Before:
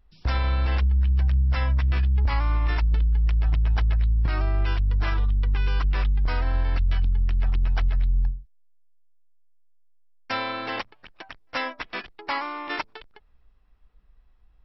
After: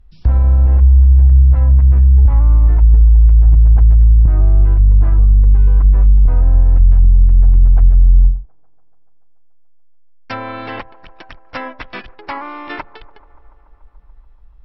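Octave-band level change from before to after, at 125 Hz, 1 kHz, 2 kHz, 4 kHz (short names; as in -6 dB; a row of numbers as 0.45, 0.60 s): +13.0, +1.5, -1.5, -5.0 dB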